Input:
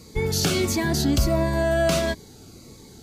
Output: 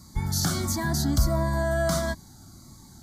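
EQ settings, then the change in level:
phaser with its sweep stopped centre 1,100 Hz, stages 4
0.0 dB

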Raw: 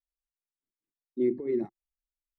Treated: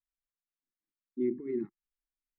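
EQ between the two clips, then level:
Butterworth band-reject 650 Hz, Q 0.72
low-pass filter 1,800 Hz 12 dB per octave
parametric band 73 Hz −11 dB 1.4 octaves
0.0 dB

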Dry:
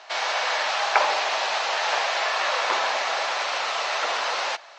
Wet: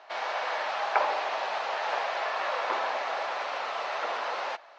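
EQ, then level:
high-frequency loss of the air 76 metres
high-shelf EQ 2,100 Hz −10.5 dB
−2.5 dB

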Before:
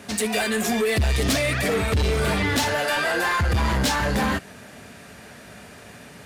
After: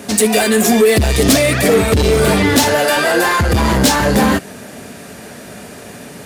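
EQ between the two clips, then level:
parametric band 340 Hz +9.5 dB 2.9 octaves
high-shelf EQ 4,600 Hz +11 dB
+3.5 dB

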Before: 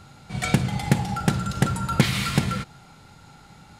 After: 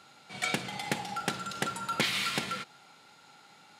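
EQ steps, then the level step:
high-pass filter 320 Hz 12 dB per octave
parametric band 3,100 Hz +5 dB 1.7 octaves
−6.5 dB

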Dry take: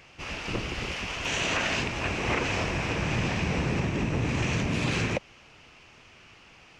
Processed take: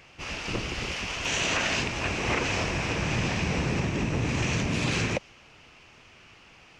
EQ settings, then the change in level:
dynamic equaliser 6,000 Hz, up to +4 dB, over −48 dBFS, Q 0.86
0.0 dB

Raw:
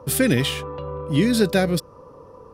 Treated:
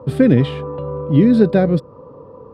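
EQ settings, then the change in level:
graphic EQ with 10 bands 125 Hz +9 dB, 250 Hz +8 dB, 500 Hz +7 dB, 1,000 Hz +5 dB, 4,000 Hz +7 dB, 8,000 Hz +12 dB
dynamic equaliser 3,400 Hz, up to −4 dB, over −29 dBFS, Q 1
high-frequency loss of the air 450 metres
−2.5 dB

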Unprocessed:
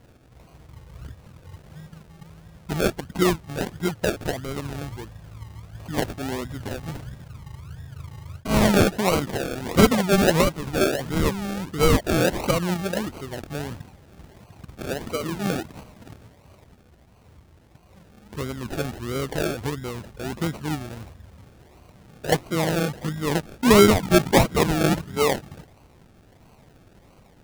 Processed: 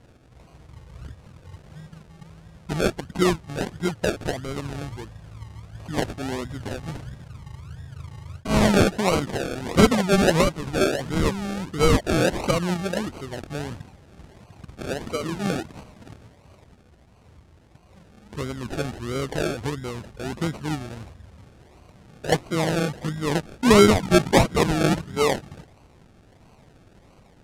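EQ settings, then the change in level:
low-pass filter 10,000 Hz 12 dB per octave
0.0 dB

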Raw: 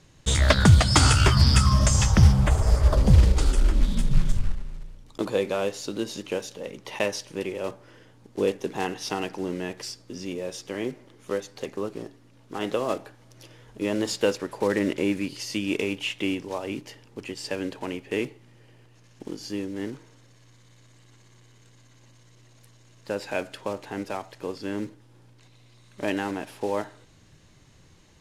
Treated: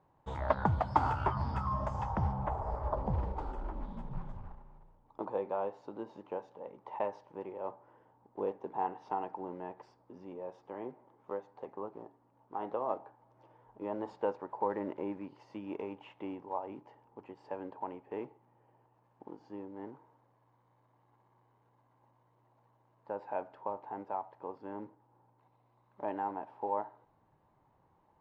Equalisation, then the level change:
resonant band-pass 890 Hz, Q 4.6
spectral tilt −4 dB per octave
+1.0 dB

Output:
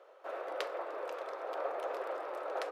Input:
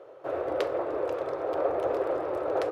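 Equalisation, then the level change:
Bessel high-pass filter 980 Hz, order 2
−2.0 dB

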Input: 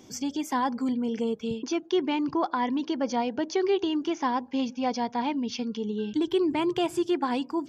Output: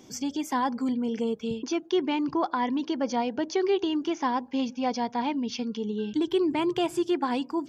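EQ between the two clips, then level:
mains-hum notches 50/100 Hz
0.0 dB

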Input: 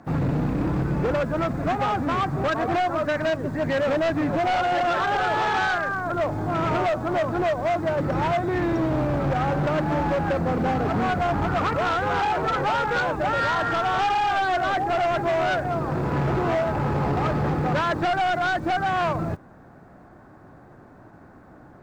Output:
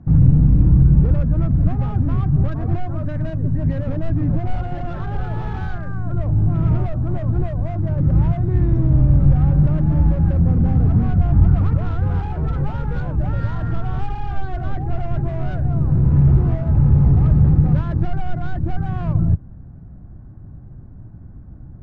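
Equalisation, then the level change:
bass and treble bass +13 dB, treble +4 dB
RIAA equalisation playback
low-shelf EQ 200 Hz +3.5 dB
−12.5 dB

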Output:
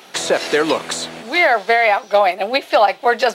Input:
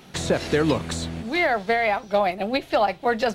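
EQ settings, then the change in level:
high-pass filter 470 Hz 12 dB per octave
+8.5 dB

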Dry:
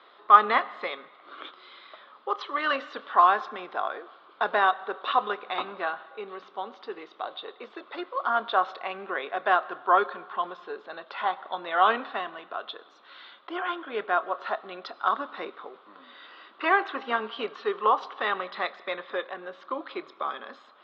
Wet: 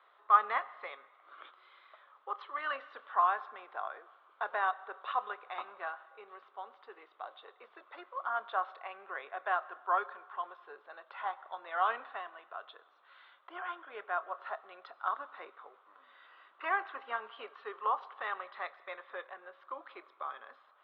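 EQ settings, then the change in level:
band-pass filter 650–2,300 Hz
−8.0 dB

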